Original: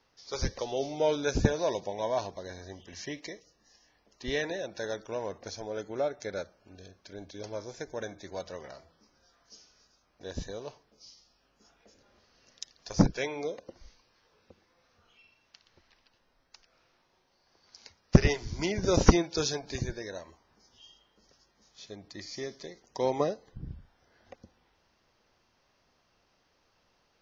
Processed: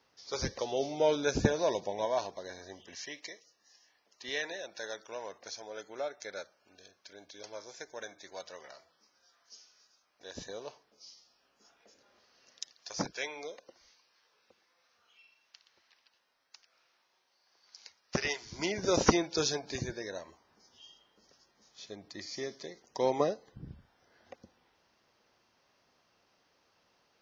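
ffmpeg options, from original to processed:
-af "asetnsamples=n=441:p=0,asendcmd='2.05 highpass f 370;2.95 highpass f 1100;10.35 highpass f 440;12.73 highpass f 1200;18.52 highpass f 350;19.22 highpass f 170',highpass=f=140:p=1"

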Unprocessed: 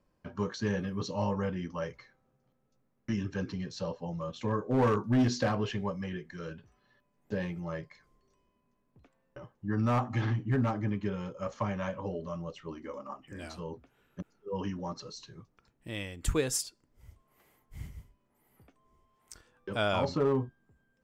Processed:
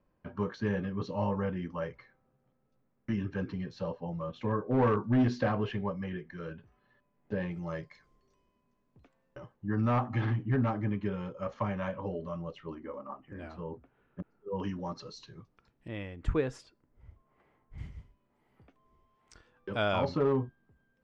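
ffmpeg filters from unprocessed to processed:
-af "asetnsamples=n=441:p=0,asendcmd='7.51 lowpass f 6700;9.54 lowpass f 3200;12.75 lowpass f 1800;14.6 lowpass f 4600;15.88 lowpass f 1900;17.78 lowpass f 3900',lowpass=2.7k"

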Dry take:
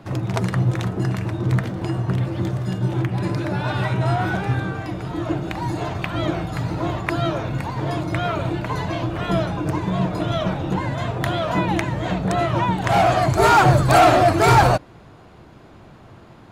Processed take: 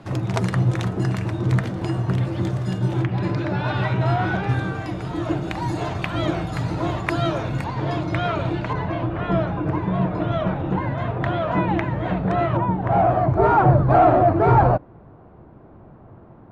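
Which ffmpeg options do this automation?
-af "asetnsamples=n=441:p=0,asendcmd='3.04 lowpass f 4400;4.49 lowpass f 11000;7.64 lowpass f 5100;8.73 lowpass f 2100;12.57 lowpass f 1000',lowpass=11k"

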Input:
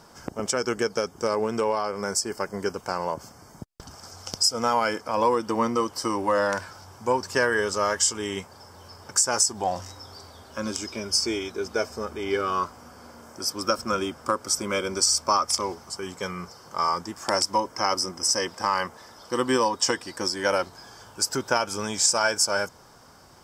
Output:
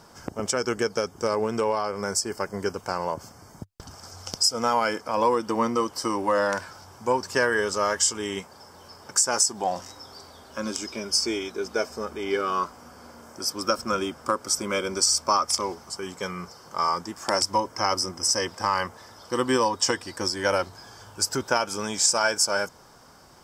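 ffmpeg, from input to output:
-af "asetnsamples=n=441:p=0,asendcmd='4.31 equalizer g -3.5;8.39 equalizer g -12;12.85 equalizer g -3.5;17.42 equalizer g 7;21.42 equalizer g -4.5',equalizer=f=98:t=o:w=0.4:g=4"

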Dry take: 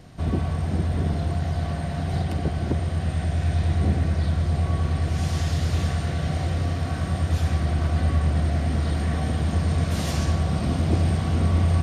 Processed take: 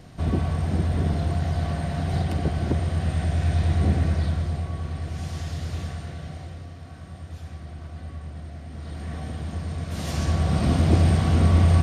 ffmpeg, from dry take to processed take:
-af "volume=18.5dB,afade=t=out:st=4.09:d=0.6:silence=0.421697,afade=t=out:st=5.74:d=0.95:silence=0.398107,afade=t=in:st=8.7:d=0.45:silence=0.446684,afade=t=in:st=9.86:d=0.83:silence=0.281838"

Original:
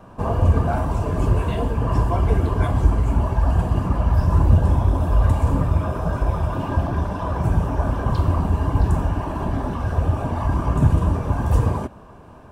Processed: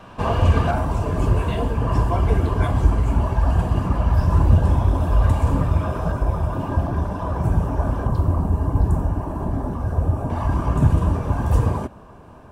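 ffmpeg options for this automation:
-af "asetnsamples=n=441:p=0,asendcmd='0.71 equalizer g 2;6.12 equalizer g -4.5;8.07 equalizer g -12;10.3 equalizer g -0.5',equalizer=f=3.1k:t=o:w=2.2:g=12"

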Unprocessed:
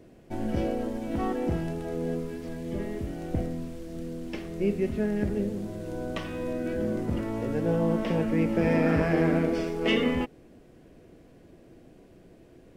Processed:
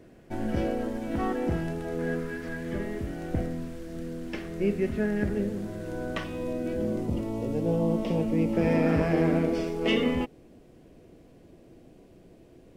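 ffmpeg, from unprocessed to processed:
-af "asetnsamples=n=441:p=0,asendcmd='1.99 equalizer g 14.5;2.78 equalizer g 6;6.24 equalizer g -6;7.07 equalizer g -14.5;8.53 equalizer g -4',equalizer=f=1.6k:t=o:w=0.73:g=4.5"

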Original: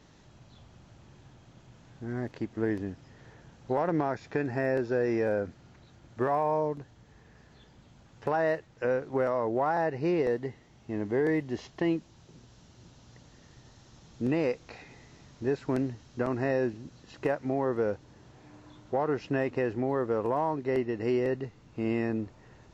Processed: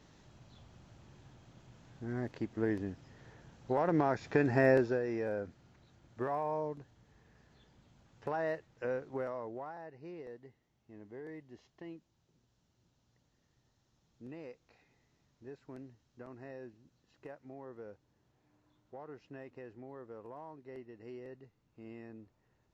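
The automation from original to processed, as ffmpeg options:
-af "volume=3dB,afade=t=in:st=3.74:d=0.96:silence=0.473151,afade=t=out:st=4.7:d=0.31:silence=0.281838,afade=t=out:st=8.97:d=0.81:silence=0.251189"

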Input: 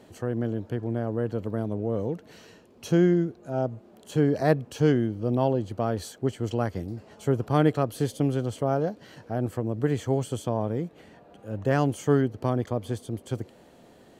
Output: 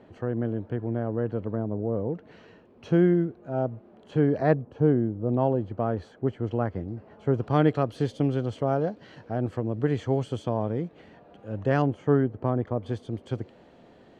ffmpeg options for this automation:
-af "asetnsamples=n=441:p=0,asendcmd='1.55 lowpass f 1300;2.15 lowpass f 2400;4.54 lowpass f 1000;5.29 lowpass f 1800;7.34 lowpass f 4000;11.82 lowpass f 1700;12.86 lowpass f 3700',lowpass=2.3k"

